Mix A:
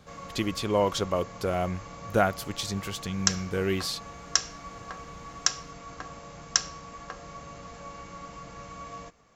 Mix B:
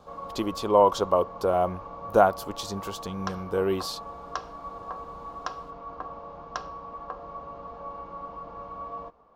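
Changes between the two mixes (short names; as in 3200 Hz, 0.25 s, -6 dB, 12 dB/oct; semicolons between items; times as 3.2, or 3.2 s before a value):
background: add air absorption 340 m; master: add ten-band EQ 125 Hz -8 dB, 500 Hz +4 dB, 1000 Hz +11 dB, 2000 Hz -12 dB, 8000 Hz -4 dB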